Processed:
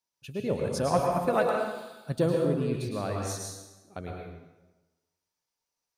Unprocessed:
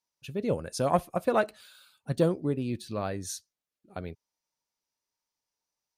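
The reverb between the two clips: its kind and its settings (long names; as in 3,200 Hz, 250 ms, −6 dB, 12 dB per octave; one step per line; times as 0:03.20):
dense smooth reverb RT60 1.1 s, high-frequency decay 0.8×, pre-delay 95 ms, DRR −0.5 dB
level −1.5 dB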